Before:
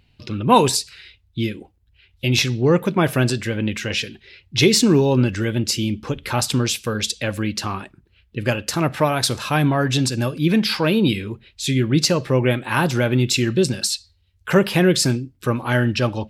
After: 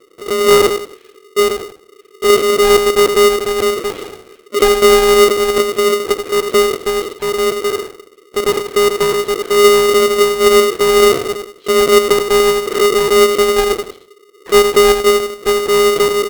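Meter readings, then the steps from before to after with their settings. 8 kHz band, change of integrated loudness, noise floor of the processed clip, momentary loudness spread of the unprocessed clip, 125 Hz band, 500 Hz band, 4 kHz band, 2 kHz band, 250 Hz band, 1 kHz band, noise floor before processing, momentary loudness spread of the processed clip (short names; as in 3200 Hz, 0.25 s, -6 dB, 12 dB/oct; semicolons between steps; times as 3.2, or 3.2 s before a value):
+4.5 dB, +7.0 dB, -47 dBFS, 11 LU, -15.0 dB, +12.5 dB, +5.5 dB, +6.0 dB, -3.5 dB, +8.0 dB, -60 dBFS, 11 LU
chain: feedback echo 87 ms, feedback 28%, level -8 dB; monotone LPC vocoder at 8 kHz 190 Hz; low shelf 420 Hz -4.5 dB; in parallel at +1 dB: compressor, threshold -30 dBFS, peak gain reduction 19.5 dB; on the sum: tilt -4.5 dB/oct; polarity switched at an audio rate 410 Hz; gain -11 dB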